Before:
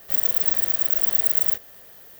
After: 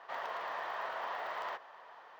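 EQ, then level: band-pass 970 Hz, Q 4.1; air absorption 230 m; tilt +3 dB/oct; +13.5 dB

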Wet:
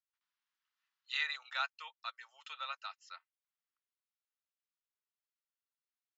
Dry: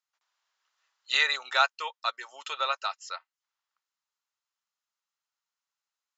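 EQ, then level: BPF 510–2400 Hz; differentiator; +2.0 dB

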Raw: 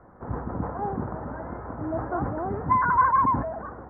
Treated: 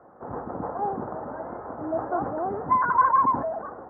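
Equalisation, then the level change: band-pass 720 Hz, Q 0.79; air absorption 300 m; notch 980 Hz, Q 19; +4.5 dB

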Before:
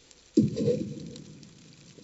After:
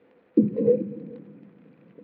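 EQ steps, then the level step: air absorption 130 m; speaker cabinet 190–2100 Hz, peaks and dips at 200 Hz +7 dB, 280 Hz +4 dB, 490 Hz +8 dB, 720 Hz +4 dB; 0.0 dB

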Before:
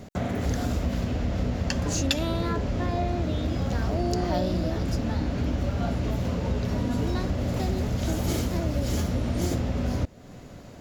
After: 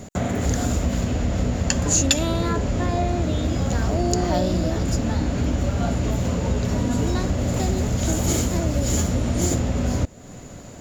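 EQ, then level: bell 7000 Hz +14 dB 0.2 oct; +4.5 dB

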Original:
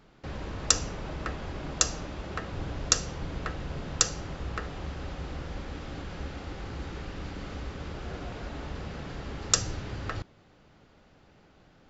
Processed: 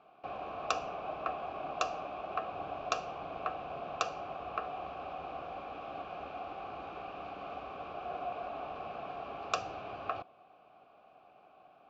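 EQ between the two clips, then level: vowel filter a; air absorption 110 m; notch 520 Hz, Q 17; +12.0 dB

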